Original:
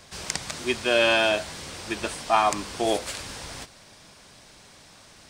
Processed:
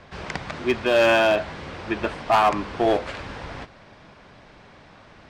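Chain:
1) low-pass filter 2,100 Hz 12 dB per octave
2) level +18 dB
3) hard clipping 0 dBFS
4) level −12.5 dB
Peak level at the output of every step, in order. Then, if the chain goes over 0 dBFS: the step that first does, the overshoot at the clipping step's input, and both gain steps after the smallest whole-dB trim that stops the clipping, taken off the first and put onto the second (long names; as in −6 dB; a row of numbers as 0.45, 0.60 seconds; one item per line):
−8.0, +10.0, 0.0, −12.5 dBFS
step 2, 10.0 dB
step 2 +8 dB, step 4 −2.5 dB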